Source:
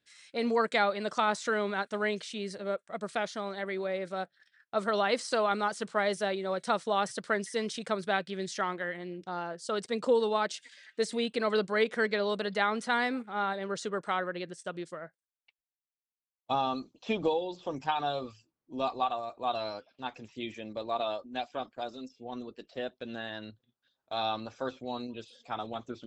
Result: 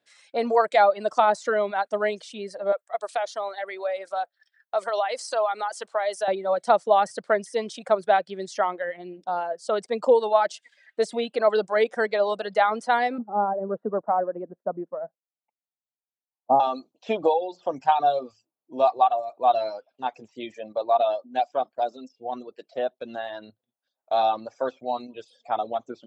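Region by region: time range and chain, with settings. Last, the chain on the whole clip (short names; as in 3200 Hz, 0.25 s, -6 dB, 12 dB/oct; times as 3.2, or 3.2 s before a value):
2.72–6.28 HPF 460 Hz + tilt +1.5 dB/oct + compressor 2.5:1, threshold -31 dBFS
13.18–16.6 LPF 1100 Hz 24 dB/oct + bell 220 Hz +9.5 dB 0.74 oct
whole clip: HPF 140 Hz; reverb removal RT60 1.3 s; bell 690 Hz +14 dB 1.2 oct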